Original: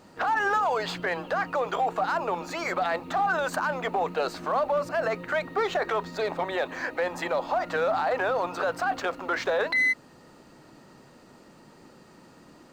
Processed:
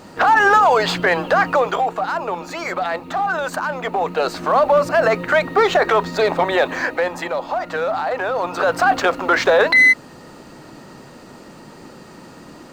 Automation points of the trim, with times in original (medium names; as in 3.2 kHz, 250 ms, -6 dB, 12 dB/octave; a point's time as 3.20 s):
1.52 s +12 dB
1.95 s +4.5 dB
3.74 s +4.5 dB
4.72 s +11.5 dB
6.73 s +11.5 dB
7.31 s +4 dB
8.28 s +4 dB
8.81 s +12 dB